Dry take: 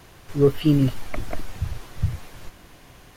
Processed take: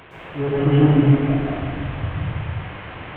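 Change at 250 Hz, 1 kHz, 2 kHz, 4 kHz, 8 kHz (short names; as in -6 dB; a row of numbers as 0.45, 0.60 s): +5.5 dB, +11.0 dB, +9.5 dB, +2.0 dB, under -25 dB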